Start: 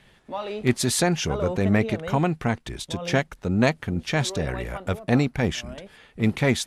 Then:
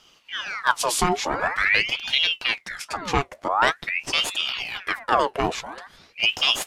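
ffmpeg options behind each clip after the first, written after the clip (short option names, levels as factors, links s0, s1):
-af "flanger=delay=3.9:depth=3.4:regen=-74:speed=1.6:shape=triangular,aeval=exprs='val(0)*sin(2*PI*1800*n/s+1800*0.7/0.46*sin(2*PI*0.46*n/s))':c=same,volume=2.24"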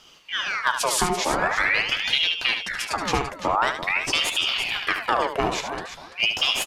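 -filter_complex "[0:a]acompressor=threshold=0.0794:ratio=6,asplit=2[s0][s1];[s1]aecho=0:1:74|339:0.398|0.299[s2];[s0][s2]amix=inputs=2:normalize=0,volume=1.5"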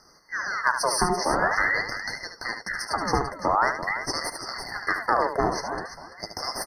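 -af "afftfilt=real='re*eq(mod(floor(b*sr/1024/2100),2),0)':imag='im*eq(mod(floor(b*sr/1024/2100),2),0)':win_size=1024:overlap=0.75"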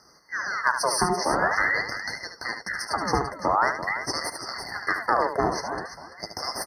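-af "highpass=51"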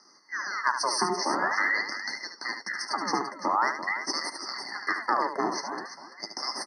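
-af "highpass=f=230:w=0.5412,highpass=f=230:w=1.3066,equalizer=f=480:t=q:w=4:g=-10,equalizer=f=680:t=q:w=4:g=-8,equalizer=f=1500:t=q:w=4:g=-6,lowpass=f=7900:w=0.5412,lowpass=f=7900:w=1.3066"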